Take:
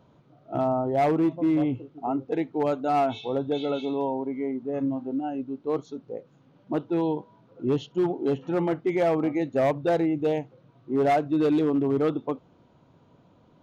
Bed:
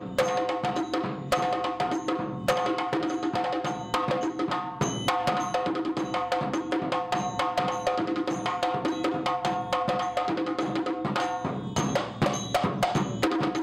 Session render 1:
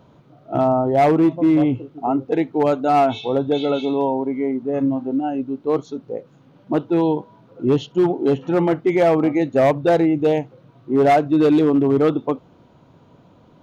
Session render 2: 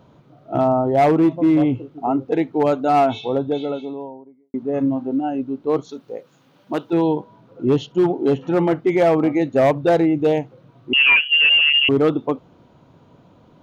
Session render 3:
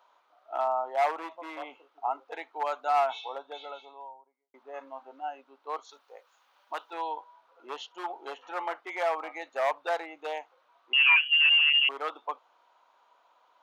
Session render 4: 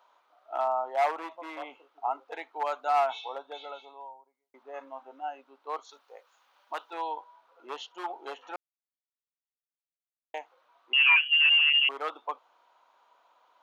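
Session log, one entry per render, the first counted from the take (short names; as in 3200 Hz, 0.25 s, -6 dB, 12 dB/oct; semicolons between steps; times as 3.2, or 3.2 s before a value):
gain +7.5 dB
3.04–4.54 studio fade out; 5.89–6.93 tilt +3 dB/oct; 10.93–11.89 inverted band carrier 3100 Hz
ladder high-pass 750 Hz, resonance 35%
4.85–5.28 notch 4400 Hz, Q 9.8; 8.56–10.34 mute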